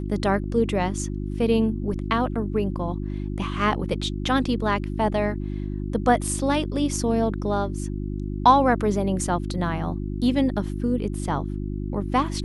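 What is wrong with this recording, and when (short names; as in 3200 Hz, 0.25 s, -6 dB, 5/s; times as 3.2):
hum 50 Hz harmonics 7 -29 dBFS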